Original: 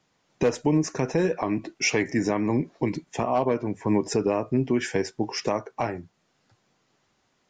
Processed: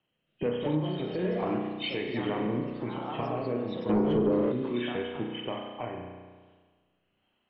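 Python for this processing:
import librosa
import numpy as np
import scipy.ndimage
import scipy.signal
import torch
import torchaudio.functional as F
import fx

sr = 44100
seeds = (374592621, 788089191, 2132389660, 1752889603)

y = fx.freq_compress(x, sr, knee_hz=2500.0, ratio=4.0)
y = fx.echo_pitch(y, sr, ms=271, semitones=3, count=3, db_per_echo=-6.0)
y = fx.rotary(y, sr, hz=1.2)
y = fx.rev_spring(y, sr, rt60_s=1.5, pass_ms=(33,), chirp_ms=20, drr_db=1.0)
y = fx.leveller(y, sr, passes=2, at=(3.89, 4.52))
y = fx.env_lowpass_down(y, sr, base_hz=1000.0, full_db=-13.0)
y = F.gain(torch.from_numpy(y), -8.0).numpy()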